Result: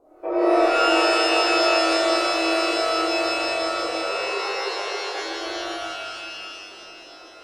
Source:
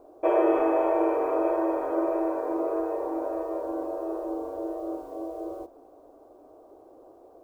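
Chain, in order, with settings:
0:03.77–0:05.14: three sine waves on the formant tracks
treble cut that deepens with the level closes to 1,300 Hz, closed at −20 dBFS
reverb with rising layers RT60 2.5 s, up +12 semitones, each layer −2 dB, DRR −9 dB
level −7.5 dB

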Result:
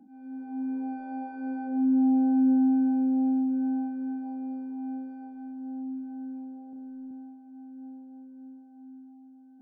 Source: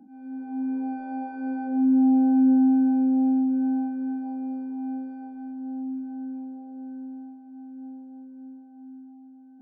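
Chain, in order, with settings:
0:06.70–0:07.11: flutter between parallel walls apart 5.1 metres, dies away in 0.32 s
level −3.5 dB

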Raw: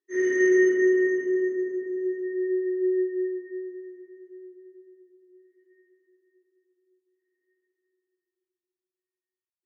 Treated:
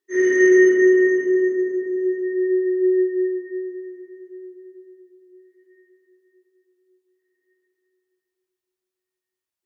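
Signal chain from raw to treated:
mains-hum notches 50/100/150/200/250/300/350 Hz
level +6.5 dB

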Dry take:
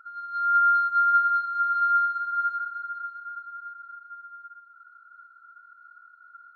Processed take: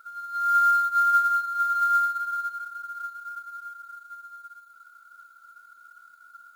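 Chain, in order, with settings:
0:02.36–0:02.95: dynamic equaliser 1,500 Hz, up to −5 dB, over −35 dBFS, Q 2
log-companded quantiser 6 bits

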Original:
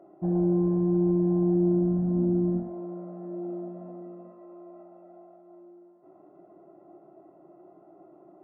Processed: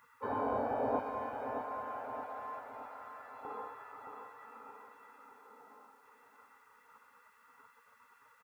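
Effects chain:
gate on every frequency bin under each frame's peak −30 dB weak
high-pass filter 160 Hz 12 dB per octave, from 0:00.99 1,300 Hz, from 0:03.45 280 Hz
repeating echo 621 ms, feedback 48%, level −8 dB
level +18 dB

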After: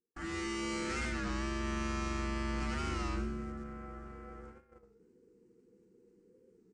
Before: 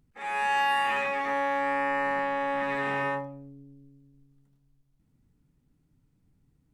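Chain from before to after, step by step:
in parallel at −11 dB: bit reduction 7 bits
on the sum: repeating echo 414 ms, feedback 51%, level −19 dB
gain into a clipping stage and back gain 30.5 dB
thirty-one-band graphic EQ 315 Hz +8 dB, 1,000 Hz −9 dB, 4,000 Hz −11 dB
echo with shifted repeats 97 ms, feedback 44%, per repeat +68 Hz, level −14 dB
dynamic equaliser 1,300 Hz, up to −7 dB, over −49 dBFS, Q 0.96
frequency shifter −500 Hz
noise gate −57 dBFS, range −29 dB
reversed playback
upward compression, threshold −40 dBFS
reversed playback
Butterworth low-pass 8,900 Hz 48 dB per octave
wow of a warped record 33 1/3 rpm, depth 100 cents

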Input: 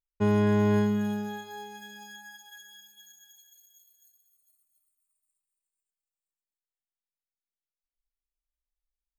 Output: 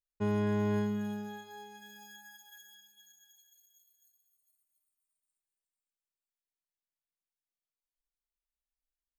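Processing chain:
0:01.86–0:02.75: high-shelf EQ 11,000 Hz +10 dB
level −7 dB

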